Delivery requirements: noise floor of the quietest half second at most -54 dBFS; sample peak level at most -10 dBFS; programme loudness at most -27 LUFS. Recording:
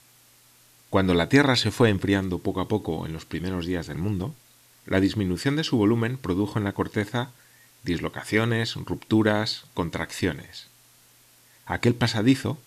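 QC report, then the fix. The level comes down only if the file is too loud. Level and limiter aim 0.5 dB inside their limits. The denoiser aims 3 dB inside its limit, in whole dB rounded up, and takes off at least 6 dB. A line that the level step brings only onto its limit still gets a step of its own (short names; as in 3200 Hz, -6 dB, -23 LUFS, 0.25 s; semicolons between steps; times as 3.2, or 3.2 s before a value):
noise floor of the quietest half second -57 dBFS: OK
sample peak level -5.5 dBFS: fail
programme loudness -25.0 LUFS: fail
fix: gain -2.5 dB; limiter -10.5 dBFS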